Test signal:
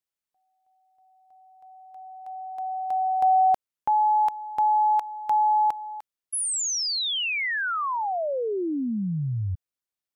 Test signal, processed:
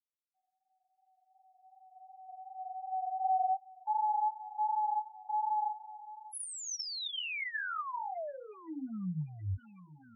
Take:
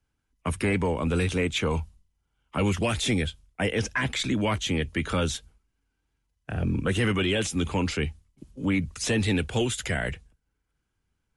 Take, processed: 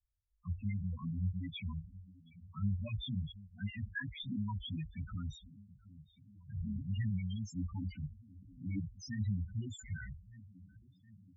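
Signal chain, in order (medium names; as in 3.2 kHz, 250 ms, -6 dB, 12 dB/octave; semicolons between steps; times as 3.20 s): shuffle delay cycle 1206 ms, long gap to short 1.5:1, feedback 50%, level -19 dB; chorus 2.7 Hz, delay 18.5 ms, depth 3.9 ms; peaking EQ 440 Hz -14.5 dB 0.98 oct; loudest bins only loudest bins 4; trim -4.5 dB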